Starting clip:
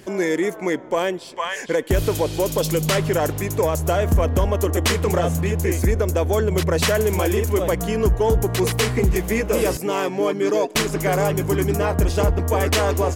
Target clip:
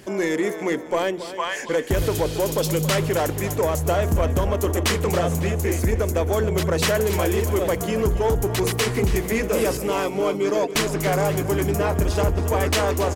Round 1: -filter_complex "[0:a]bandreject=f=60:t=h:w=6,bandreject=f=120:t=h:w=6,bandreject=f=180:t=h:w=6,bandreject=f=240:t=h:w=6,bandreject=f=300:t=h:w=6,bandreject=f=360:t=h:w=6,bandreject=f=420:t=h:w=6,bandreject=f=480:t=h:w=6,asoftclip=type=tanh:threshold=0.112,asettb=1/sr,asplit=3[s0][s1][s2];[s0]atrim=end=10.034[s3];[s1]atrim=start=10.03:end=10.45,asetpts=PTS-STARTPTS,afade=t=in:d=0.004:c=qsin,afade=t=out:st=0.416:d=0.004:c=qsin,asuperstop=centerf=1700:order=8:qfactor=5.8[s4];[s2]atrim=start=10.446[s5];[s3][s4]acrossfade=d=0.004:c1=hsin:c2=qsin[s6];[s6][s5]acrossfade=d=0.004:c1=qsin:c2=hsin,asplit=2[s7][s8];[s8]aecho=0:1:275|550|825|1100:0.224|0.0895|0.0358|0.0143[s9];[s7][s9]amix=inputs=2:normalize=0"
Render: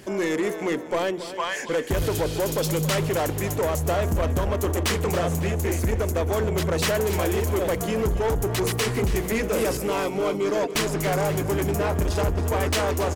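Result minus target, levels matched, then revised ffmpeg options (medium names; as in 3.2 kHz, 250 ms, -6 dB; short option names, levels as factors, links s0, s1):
saturation: distortion +8 dB
-filter_complex "[0:a]bandreject=f=60:t=h:w=6,bandreject=f=120:t=h:w=6,bandreject=f=180:t=h:w=6,bandreject=f=240:t=h:w=6,bandreject=f=300:t=h:w=6,bandreject=f=360:t=h:w=6,bandreject=f=420:t=h:w=6,bandreject=f=480:t=h:w=6,asoftclip=type=tanh:threshold=0.237,asettb=1/sr,asplit=3[s0][s1][s2];[s0]atrim=end=10.034[s3];[s1]atrim=start=10.03:end=10.45,asetpts=PTS-STARTPTS,afade=t=in:d=0.004:c=qsin,afade=t=out:st=0.416:d=0.004:c=qsin,asuperstop=centerf=1700:order=8:qfactor=5.8[s4];[s2]atrim=start=10.446[s5];[s3][s4]acrossfade=d=0.004:c1=hsin:c2=qsin[s6];[s6][s5]acrossfade=d=0.004:c1=qsin:c2=hsin,asplit=2[s7][s8];[s8]aecho=0:1:275|550|825|1100:0.224|0.0895|0.0358|0.0143[s9];[s7][s9]amix=inputs=2:normalize=0"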